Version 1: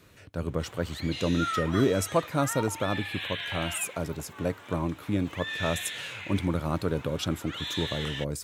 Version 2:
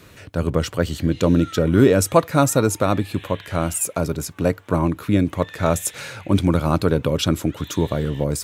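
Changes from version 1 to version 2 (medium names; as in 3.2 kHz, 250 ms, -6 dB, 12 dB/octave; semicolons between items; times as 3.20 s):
speech +10.0 dB; background -8.0 dB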